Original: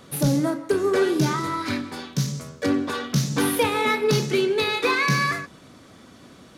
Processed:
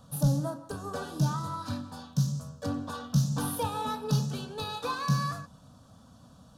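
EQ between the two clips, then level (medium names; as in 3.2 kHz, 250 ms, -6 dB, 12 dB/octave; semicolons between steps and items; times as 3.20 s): bass shelf 350 Hz +9 dB; static phaser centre 880 Hz, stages 4; -7.5 dB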